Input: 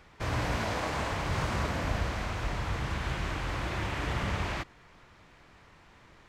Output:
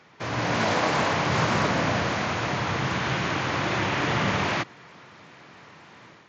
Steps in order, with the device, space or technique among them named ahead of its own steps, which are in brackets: Bluetooth headset (high-pass 120 Hz 24 dB/octave; level rider gain up to 6.5 dB; resampled via 16 kHz; trim +3 dB; SBC 64 kbps 16 kHz)

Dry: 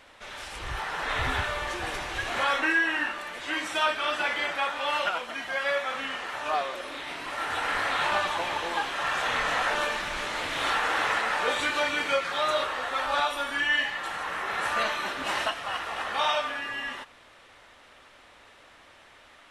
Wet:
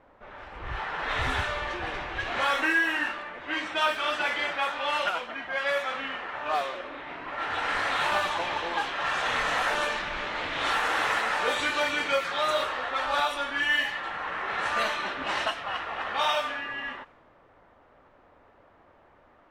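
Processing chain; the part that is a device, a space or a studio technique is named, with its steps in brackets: cassette deck with a dynamic noise filter (white noise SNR 25 dB; level-controlled noise filter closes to 850 Hz, open at -22 dBFS)

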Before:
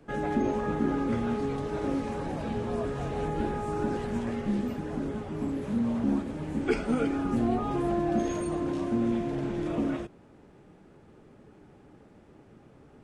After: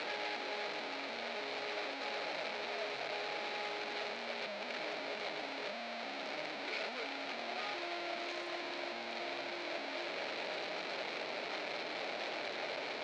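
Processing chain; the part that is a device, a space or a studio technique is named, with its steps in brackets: home computer beeper (one-bit comparator; cabinet simulation 550–4900 Hz, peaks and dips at 620 Hz +8 dB, 1.1 kHz -5 dB, 2.3 kHz +8 dB, 4.1 kHz +8 dB); trim -8 dB

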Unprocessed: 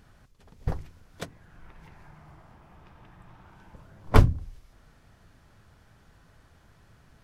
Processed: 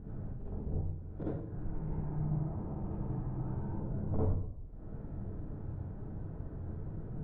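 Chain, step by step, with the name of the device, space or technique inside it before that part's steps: television next door (compression 5:1, threshold -48 dBFS, peak gain reduction 34 dB; low-pass 430 Hz 12 dB/octave; reverberation RT60 0.70 s, pre-delay 42 ms, DRR -7.5 dB); trim +9.5 dB

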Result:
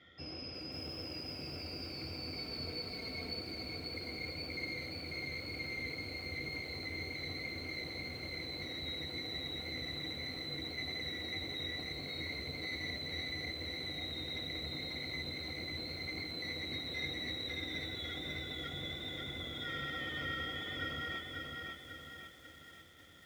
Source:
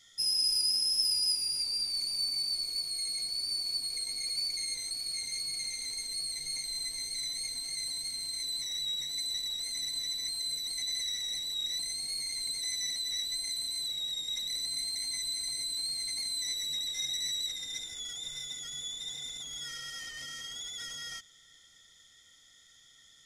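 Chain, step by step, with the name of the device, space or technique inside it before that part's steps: 2.37–3.41 s: comb 4.5 ms, depth 94%; sub-octave bass pedal (octave divider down 2 oct, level +2 dB; cabinet simulation 72–2300 Hz, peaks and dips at 83 Hz +7 dB, 120 Hz -4 dB, 330 Hz +8 dB, 550 Hz +5 dB, 950 Hz -7 dB, 1.8 kHz -6 dB); bit-crushed delay 543 ms, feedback 55%, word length 12-bit, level -3 dB; trim +9.5 dB

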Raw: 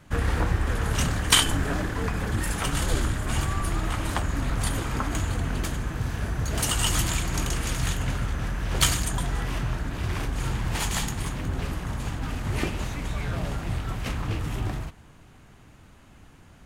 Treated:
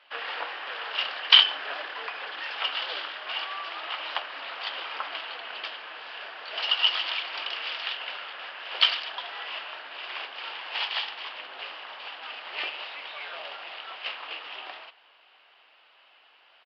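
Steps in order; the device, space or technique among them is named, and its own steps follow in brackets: musical greeting card (resampled via 11.025 kHz; high-pass 580 Hz 24 dB/octave; peaking EQ 2.9 kHz +11 dB 0.53 oct); trim -2.5 dB

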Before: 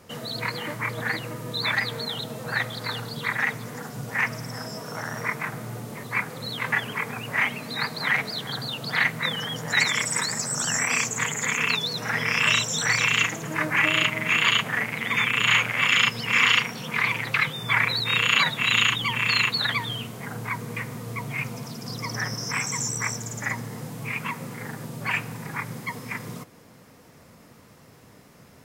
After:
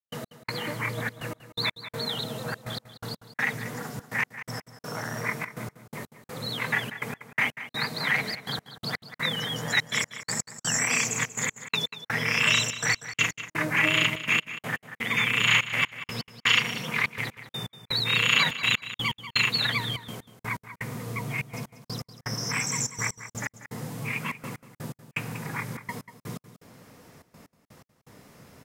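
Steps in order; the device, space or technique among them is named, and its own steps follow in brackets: trance gate with a delay (trance gate ".x..xxxxx.x." 124 bpm -60 dB; feedback delay 189 ms, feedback 16%, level -14 dB); dynamic bell 1.2 kHz, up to -4 dB, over -35 dBFS, Q 1

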